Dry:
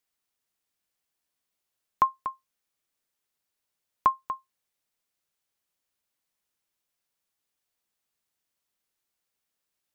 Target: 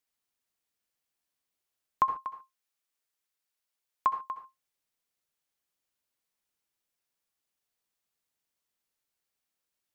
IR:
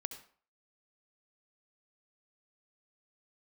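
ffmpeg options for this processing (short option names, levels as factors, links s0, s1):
-filter_complex "[0:a]asplit=3[s0][s1][s2];[s0]afade=t=out:st=2.06:d=0.02[s3];[s1]lowshelf=f=460:g=-9,afade=t=in:st=2.06:d=0.02,afade=t=out:st=4.31:d=0.02[s4];[s2]afade=t=in:st=4.31:d=0.02[s5];[s3][s4][s5]amix=inputs=3:normalize=0[s6];[1:a]atrim=start_sample=2205,atrim=end_sample=6615[s7];[s6][s7]afir=irnorm=-1:irlink=0,volume=0.891"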